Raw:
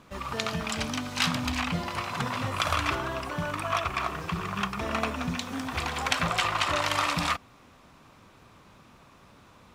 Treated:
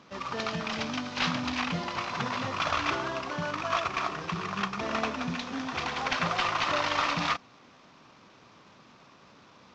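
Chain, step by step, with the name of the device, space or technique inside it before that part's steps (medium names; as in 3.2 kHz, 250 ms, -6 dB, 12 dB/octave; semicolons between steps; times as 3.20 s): early wireless headset (high-pass 150 Hz 12 dB/octave; CVSD coder 32 kbps)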